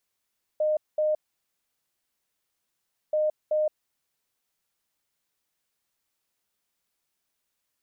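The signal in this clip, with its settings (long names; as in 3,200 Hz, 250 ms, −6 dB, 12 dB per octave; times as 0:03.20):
beeps in groups sine 613 Hz, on 0.17 s, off 0.21 s, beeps 2, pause 1.98 s, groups 2, −21 dBFS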